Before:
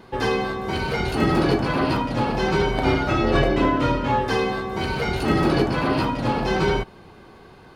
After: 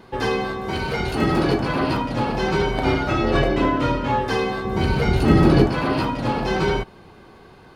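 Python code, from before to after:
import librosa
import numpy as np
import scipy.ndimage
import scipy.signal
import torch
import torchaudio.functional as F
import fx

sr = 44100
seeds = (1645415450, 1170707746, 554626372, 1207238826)

y = fx.low_shelf(x, sr, hz=310.0, db=9.5, at=(4.65, 5.68))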